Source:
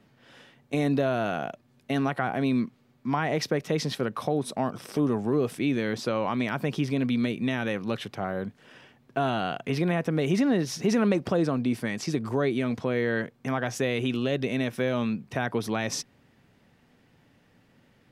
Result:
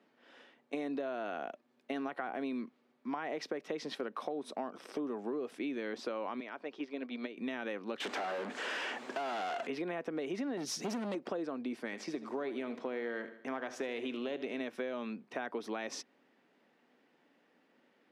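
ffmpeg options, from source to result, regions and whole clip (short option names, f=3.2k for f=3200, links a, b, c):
-filter_complex "[0:a]asettb=1/sr,asplit=3[a][b][c];[a]atrim=end=6.404[d];[b]atrim=start=6.4:end=7.37,asetpts=PTS-STARTPTS,afade=t=in:d=0.004:c=qsin,afade=t=out:st=0.966:d=0.004:c=qsin,agate=range=-8dB:threshold=-26dB:ratio=16:release=100:detection=peak,highpass=280,lowpass=5.6k[e];[c]atrim=start=7.366[f];[d][e]acrossfade=d=0.004:c1=hsin:c2=qsin[g];[g][f]acrossfade=d=0.004:c1=qsin:c2=hsin,asettb=1/sr,asplit=3[h][i][j];[h]atrim=end=8.004[k];[i]atrim=start=8:end=9.67,asetpts=PTS-STARTPTS,afade=t=in:d=0.004:c=qsin,afade=t=out:st=1.666:d=0.004:c=qsin,equalizer=f=7.6k:t=o:w=0.81:g=12.5,acompressor=threshold=-33dB:ratio=2.5:attack=3.2:release=140:knee=1:detection=peak,asplit=2[l][m];[m]highpass=f=720:p=1,volume=38dB,asoftclip=type=tanh:threshold=-20.5dB[n];[l][n]amix=inputs=2:normalize=0,lowpass=f=3.7k:p=1,volume=-6dB[o];[j]atrim=start=9.666[p];[k][o]acrossfade=d=0.004:c1=hsin:c2=qsin[q];[q][p]acrossfade=d=0.004:c1=qsin:c2=hsin,asettb=1/sr,asplit=3[r][s][t];[r]atrim=end=10.574[u];[s]atrim=start=10.57:end=11.15,asetpts=PTS-STARTPTS,afade=t=in:d=0.004:c=qsin,afade=t=out:st=0.576:d=0.004:c=qsin,bass=f=250:g=10,treble=f=4k:g=14,volume=19dB,asoftclip=hard,volume=-19dB[v];[t]atrim=start=11.146[w];[u][v]acrossfade=d=0.004:c1=hsin:c2=qsin[x];[x][w]acrossfade=d=0.004:c1=qsin:c2=hsin,asettb=1/sr,asplit=3[y][z][aa];[y]atrim=end=11.844[ab];[z]atrim=start=11.84:end=14.61,asetpts=PTS-STARTPTS,afade=t=in:d=0.004:c=qsin,afade=t=out:st=2.766:d=0.004:c=qsin,aeval=exprs='if(lt(val(0),0),0.708*val(0),val(0))':c=same,aecho=1:1:76|152|228|304:0.188|0.0885|0.0416|0.0196,atrim=end_sample=122157[ac];[aa]atrim=start=14.606[ad];[ab][ac]acrossfade=d=0.004:c1=hsin:c2=qsin[ae];[ae][ad]acrossfade=d=0.004:c1=qsin:c2=hsin,highpass=f=260:w=0.5412,highpass=f=260:w=1.3066,aemphasis=mode=reproduction:type=50fm,acompressor=threshold=-29dB:ratio=6,volume=-5dB"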